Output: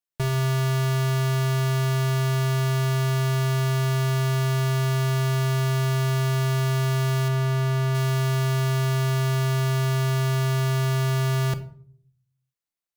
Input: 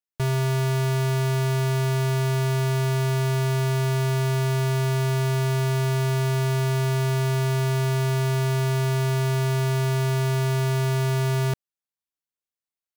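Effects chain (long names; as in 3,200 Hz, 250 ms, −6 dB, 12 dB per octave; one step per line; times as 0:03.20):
0:07.28–0:07.95: high-shelf EQ 3,800 Hz −7 dB
rectangular room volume 610 cubic metres, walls furnished, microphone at 0.81 metres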